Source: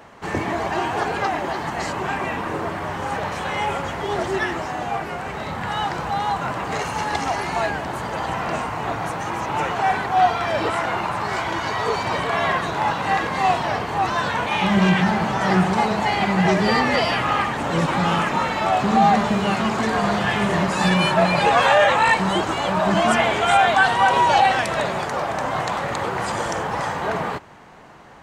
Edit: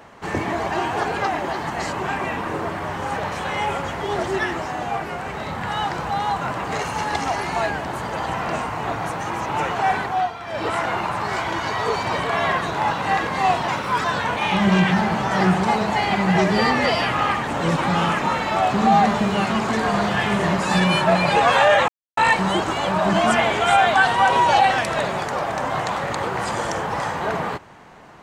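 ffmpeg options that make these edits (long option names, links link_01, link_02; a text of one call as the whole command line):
ffmpeg -i in.wav -filter_complex "[0:a]asplit=6[link_01][link_02][link_03][link_04][link_05][link_06];[link_01]atrim=end=10.31,asetpts=PTS-STARTPTS,afade=type=out:start_time=10.02:duration=0.29:silence=0.298538[link_07];[link_02]atrim=start=10.31:end=10.45,asetpts=PTS-STARTPTS,volume=-10.5dB[link_08];[link_03]atrim=start=10.45:end=13.684,asetpts=PTS-STARTPTS,afade=type=in:duration=0.29:silence=0.298538[link_09];[link_04]atrim=start=13.68:end=14.14,asetpts=PTS-STARTPTS,asetrate=56007,aresample=44100,atrim=end_sample=15973,asetpts=PTS-STARTPTS[link_10];[link_05]atrim=start=14.136:end=21.98,asetpts=PTS-STARTPTS,afade=type=out:start_time=7.84:duration=0.004:curve=hsin,apad=pad_dur=0.29[link_11];[link_06]atrim=start=21.98,asetpts=PTS-STARTPTS,afade=type=in:duration=0.004:curve=hsin[link_12];[link_07][link_08][link_09]concat=n=3:v=0:a=1[link_13];[link_13][link_10]acrossfade=duration=0.004:curve1=hsin:curve2=hsin[link_14];[link_11][link_12]concat=n=2:v=0:a=1[link_15];[link_14][link_15]acrossfade=duration=0.004:curve1=hsin:curve2=hsin" out.wav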